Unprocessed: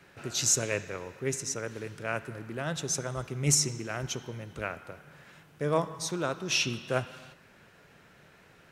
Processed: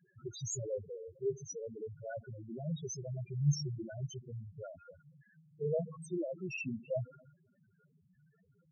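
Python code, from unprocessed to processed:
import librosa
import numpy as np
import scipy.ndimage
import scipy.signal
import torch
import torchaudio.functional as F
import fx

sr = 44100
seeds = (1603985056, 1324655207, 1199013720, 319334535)

y = fx.dynamic_eq(x, sr, hz=250.0, q=0.7, threshold_db=-42.0, ratio=4.0, max_db=4)
y = fx.spec_topn(y, sr, count=2)
y = F.gain(torch.from_numpy(y), -2.0).numpy()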